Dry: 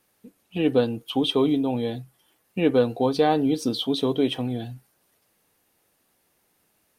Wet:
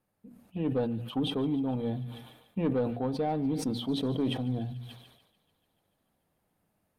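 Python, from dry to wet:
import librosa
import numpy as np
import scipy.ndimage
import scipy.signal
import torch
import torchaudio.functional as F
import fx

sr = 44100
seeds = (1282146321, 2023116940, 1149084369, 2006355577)

y = fx.rider(x, sr, range_db=10, speed_s=0.5)
y = fx.curve_eq(y, sr, hz=(190.0, 390.0, 620.0, 3400.0), db=(0, -10, -5, -17))
y = fx.echo_bbd(y, sr, ms=104, stages=1024, feedback_pct=39, wet_db=-23.0)
y = 10.0 ** (-20.5 / 20.0) * np.tanh(y / 10.0 ** (-20.5 / 20.0))
y = fx.peak_eq(y, sr, hz=5900.0, db=-4.5, octaves=0.24)
y = fx.hum_notches(y, sr, base_hz=60, count=4)
y = fx.echo_wet_highpass(y, sr, ms=146, feedback_pct=73, hz=2000.0, wet_db=-12.5)
y = fx.sustainer(y, sr, db_per_s=64.0)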